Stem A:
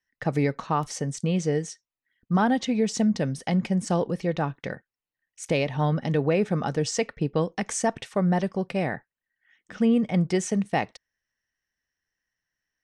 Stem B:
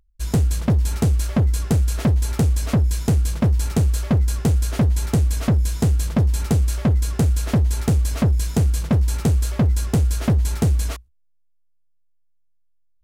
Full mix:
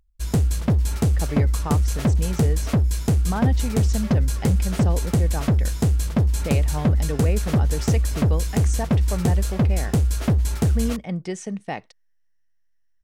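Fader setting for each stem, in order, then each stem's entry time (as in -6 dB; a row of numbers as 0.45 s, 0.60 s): -5.0 dB, -1.5 dB; 0.95 s, 0.00 s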